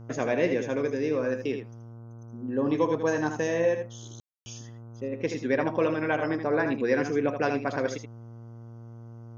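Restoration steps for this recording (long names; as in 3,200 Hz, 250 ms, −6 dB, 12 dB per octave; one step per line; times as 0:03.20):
hum removal 115.8 Hz, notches 13
ambience match 0:04.20–0:04.46
echo removal 78 ms −7.5 dB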